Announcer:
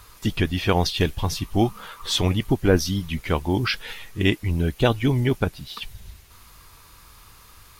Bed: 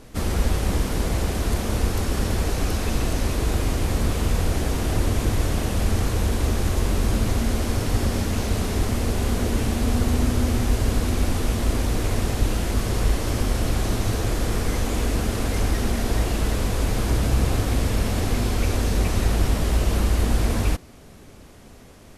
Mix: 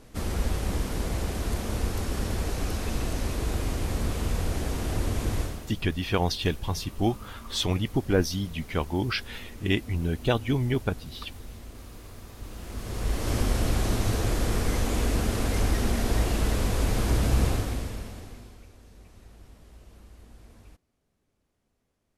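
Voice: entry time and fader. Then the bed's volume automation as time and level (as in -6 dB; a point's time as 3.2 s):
5.45 s, -5.0 dB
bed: 5.4 s -6 dB
5.74 s -22 dB
12.31 s -22 dB
13.33 s -2.5 dB
17.46 s -2.5 dB
18.73 s -30 dB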